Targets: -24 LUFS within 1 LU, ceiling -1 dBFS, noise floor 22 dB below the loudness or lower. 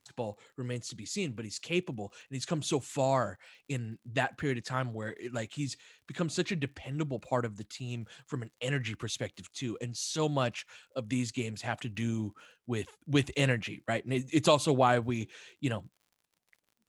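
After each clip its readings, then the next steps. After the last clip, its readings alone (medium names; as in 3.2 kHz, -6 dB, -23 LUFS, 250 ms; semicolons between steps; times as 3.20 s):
tick rate 41 per s; loudness -33.5 LUFS; peak level -9.5 dBFS; loudness target -24.0 LUFS
-> de-click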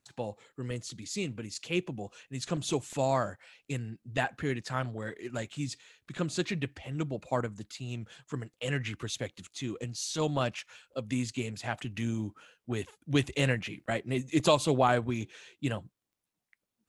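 tick rate 0.059 per s; loudness -33.5 LUFS; peak level -9.5 dBFS; loudness target -24.0 LUFS
-> trim +9.5 dB; peak limiter -1 dBFS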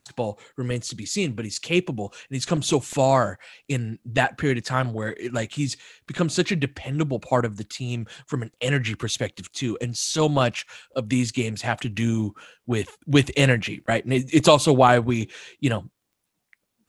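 loudness -24.0 LUFS; peak level -1.0 dBFS; noise floor -76 dBFS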